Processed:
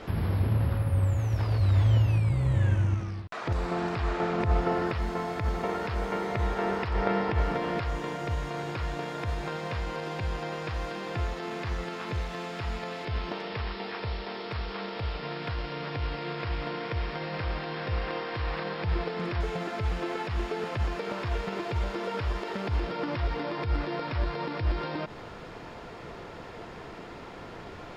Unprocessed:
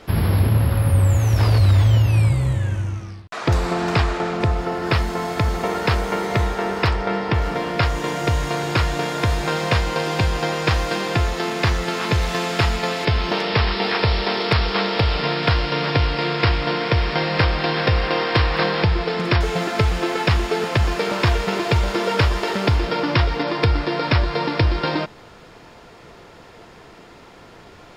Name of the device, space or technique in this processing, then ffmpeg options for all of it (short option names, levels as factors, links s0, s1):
de-esser from a sidechain: -filter_complex "[0:a]asplit=2[s0][s1];[s1]highpass=f=4400:w=0.5412,highpass=f=4400:w=1.3066,apad=whole_len=1233435[s2];[s0][s2]sidechaincompress=threshold=0.00355:ratio=4:attack=0.89:release=78,highshelf=f=4500:g=-10,volume=1.26"